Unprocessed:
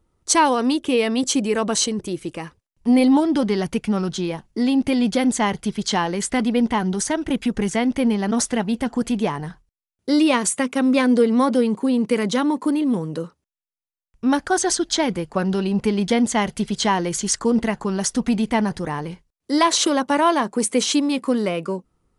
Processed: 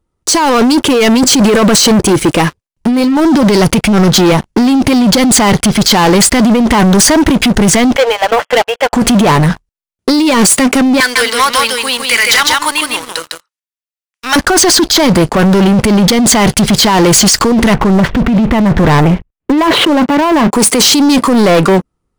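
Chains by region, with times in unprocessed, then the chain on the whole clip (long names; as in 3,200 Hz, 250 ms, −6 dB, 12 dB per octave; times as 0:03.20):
0:07.96–0:08.93: linear-phase brick-wall band-pass 440–3,400 Hz + expander for the loud parts, over −37 dBFS
0:11.00–0:14.36: Chebyshev high-pass filter 1,900 Hz + single-tap delay 155 ms −4 dB
0:17.74–0:20.52: Butterworth low-pass 3,000 Hz + spectral tilt −1.5 dB per octave
whole clip: dynamic equaliser 4,700 Hz, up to +8 dB, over −45 dBFS, Q 4.6; compressor whose output falls as the input rises −24 dBFS, ratio −1; leveller curve on the samples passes 5; level +4 dB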